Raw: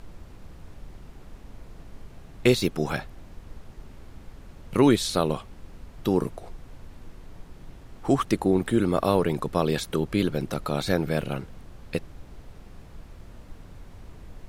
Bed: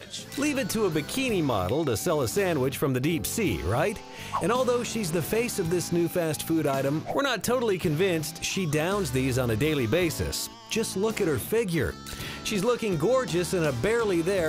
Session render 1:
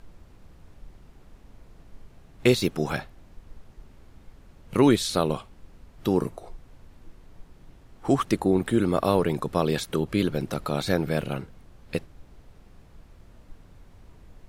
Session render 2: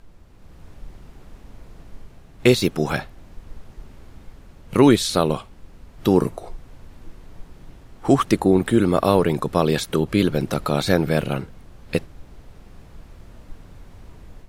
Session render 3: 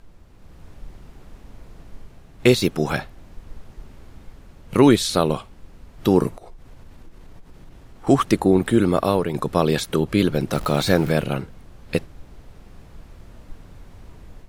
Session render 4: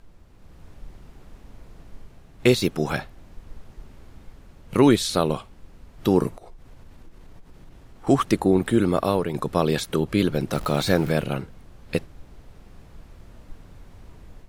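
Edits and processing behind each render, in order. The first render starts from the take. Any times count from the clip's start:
noise print and reduce 6 dB
level rider gain up to 7.5 dB
6.37–8.07 s: compression, threshold -37 dBFS; 8.89–9.34 s: fade out, to -6.5 dB; 10.54–11.12 s: jump at every zero crossing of -31 dBFS
trim -2.5 dB

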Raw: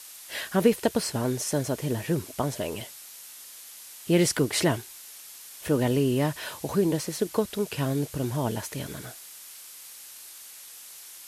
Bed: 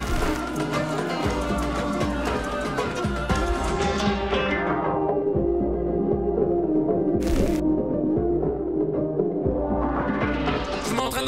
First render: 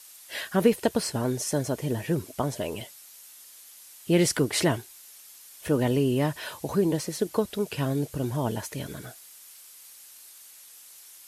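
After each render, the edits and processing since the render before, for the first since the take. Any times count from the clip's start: noise reduction 6 dB, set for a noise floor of -46 dBFS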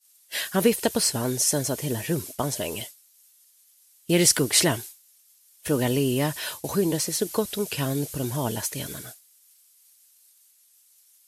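expander -36 dBFS; treble shelf 3 kHz +11 dB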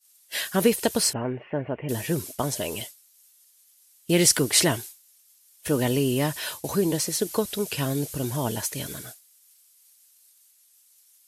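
1.13–1.89 s: rippled Chebyshev low-pass 2.9 kHz, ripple 3 dB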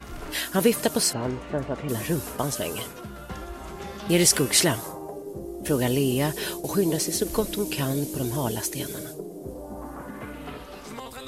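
add bed -13.5 dB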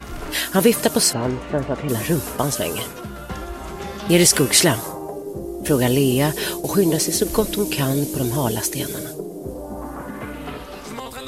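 trim +6 dB; peak limiter -2 dBFS, peak gain reduction 3 dB

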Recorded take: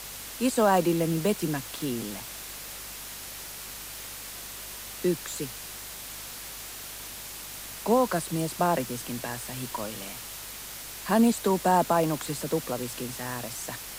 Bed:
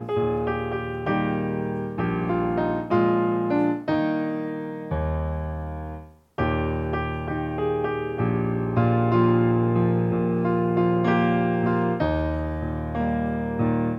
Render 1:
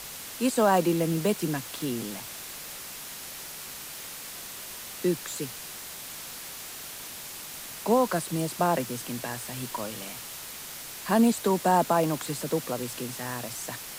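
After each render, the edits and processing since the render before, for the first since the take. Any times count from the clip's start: de-hum 50 Hz, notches 2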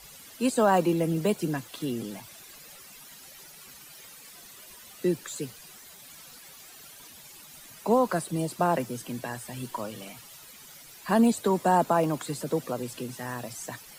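noise reduction 13 dB, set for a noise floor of -41 dBFS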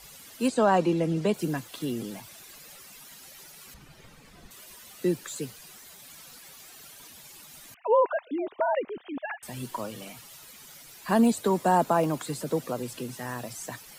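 0.48–1.34 s: low-pass 6.5 kHz; 3.74–4.51 s: RIAA curve playback; 7.74–9.43 s: formants replaced by sine waves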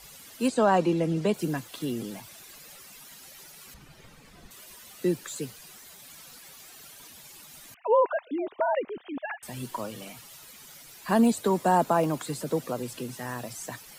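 no audible change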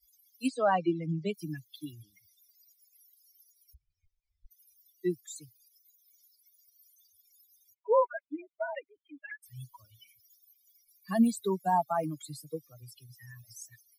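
expander on every frequency bin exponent 3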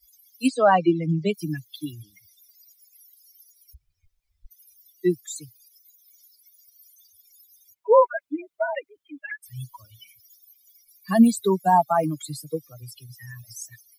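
trim +9 dB

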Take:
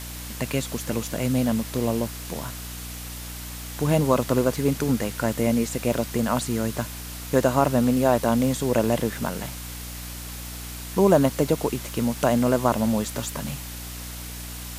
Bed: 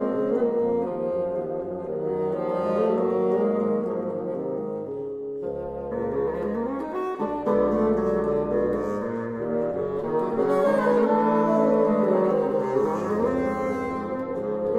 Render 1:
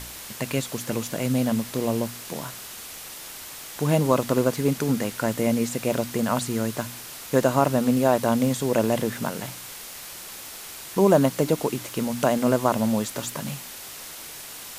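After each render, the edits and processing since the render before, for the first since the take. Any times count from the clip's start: de-hum 60 Hz, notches 5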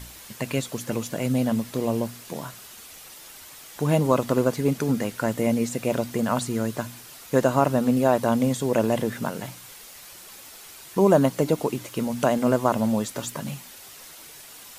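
noise reduction 7 dB, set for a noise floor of -40 dBFS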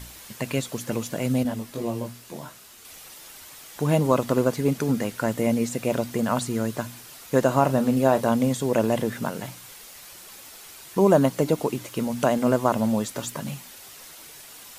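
1.43–2.85 s: detune thickener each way 11 cents; 7.47–8.32 s: doubling 30 ms -12 dB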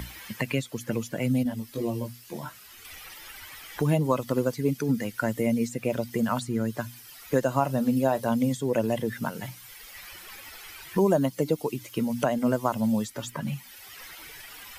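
expander on every frequency bin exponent 1.5; three bands compressed up and down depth 70%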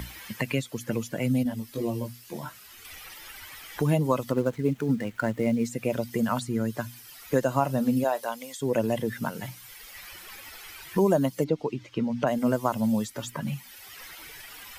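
4.31–5.65 s: median filter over 9 samples; 8.03–8.61 s: high-pass 450 Hz -> 1.1 kHz; 11.44–12.27 s: distance through air 160 m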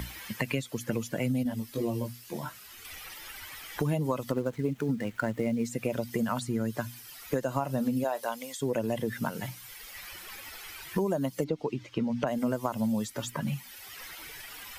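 compression, threshold -25 dBFS, peak gain reduction 8 dB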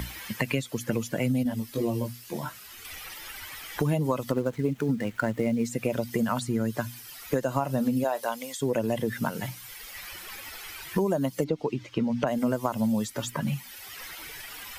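trim +3 dB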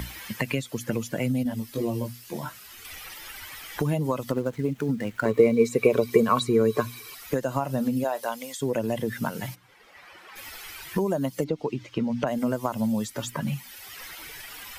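5.25–7.15 s: small resonant body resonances 430/1100/2300/3900 Hz, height 18 dB; 9.54–10.35 s: band-pass filter 310 Hz -> 850 Hz, Q 0.57

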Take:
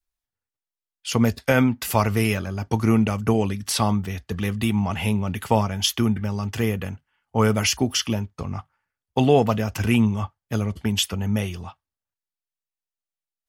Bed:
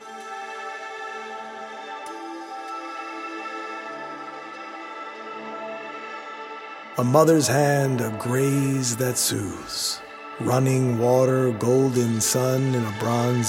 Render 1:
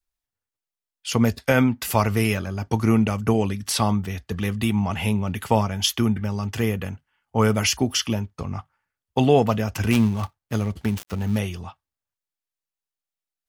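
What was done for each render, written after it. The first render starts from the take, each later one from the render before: 9.91–11.39 s: dead-time distortion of 0.15 ms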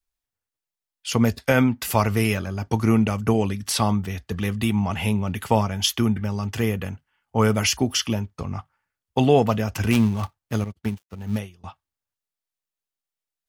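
10.64–11.64 s: upward expansion 2.5:1, over -44 dBFS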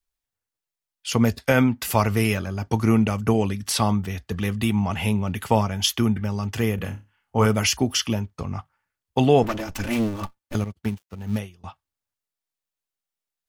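6.75–7.46 s: flutter echo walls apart 5 m, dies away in 0.25 s; 9.43–10.55 s: comb filter that takes the minimum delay 3.4 ms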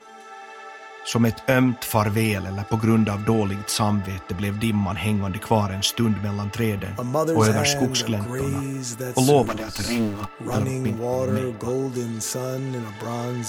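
add bed -6 dB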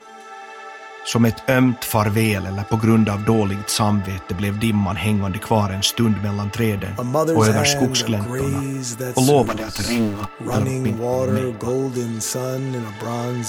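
trim +3.5 dB; peak limiter -3 dBFS, peak gain reduction 2.5 dB

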